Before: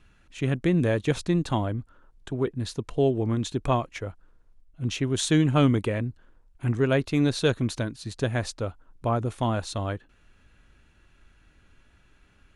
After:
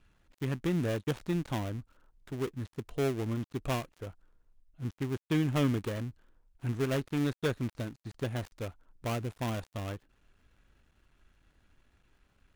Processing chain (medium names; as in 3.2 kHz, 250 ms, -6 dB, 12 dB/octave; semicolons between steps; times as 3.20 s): dead-time distortion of 0.28 ms; trim -7.5 dB